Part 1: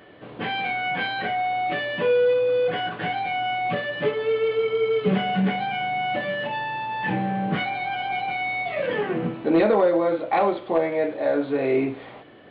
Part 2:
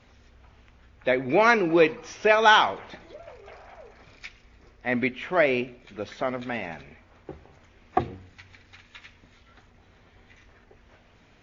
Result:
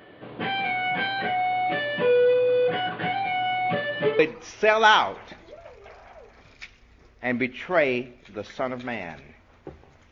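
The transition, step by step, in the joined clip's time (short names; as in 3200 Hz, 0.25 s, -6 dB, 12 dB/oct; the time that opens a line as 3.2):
part 1
4.19 switch to part 2 from 1.81 s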